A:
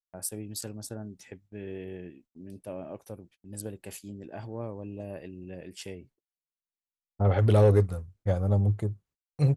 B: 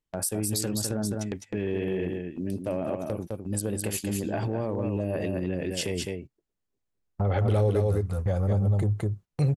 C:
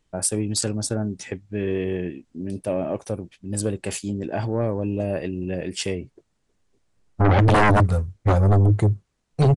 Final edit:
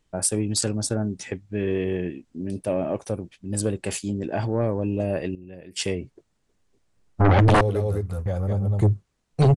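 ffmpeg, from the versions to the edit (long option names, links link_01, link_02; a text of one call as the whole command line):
ffmpeg -i take0.wav -i take1.wav -i take2.wav -filter_complex "[2:a]asplit=3[link_01][link_02][link_03];[link_01]atrim=end=5.352[link_04];[0:a]atrim=start=5.348:end=5.762[link_05];[link_02]atrim=start=5.758:end=7.612[link_06];[1:a]atrim=start=7.608:end=8.812[link_07];[link_03]atrim=start=8.808[link_08];[link_04][link_05]acrossfade=duration=0.004:curve1=hsin:curve2=hsin[link_09];[link_09][link_06]acrossfade=duration=0.004:curve1=hsin:curve2=hsin[link_10];[link_10][link_07]acrossfade=duration=0.004:curve1=hsin:curve2=hsin[link_11];[link_11][link_08]acrossfade=duration=0.004:curve1=hsin:curve2=hsin" out.wav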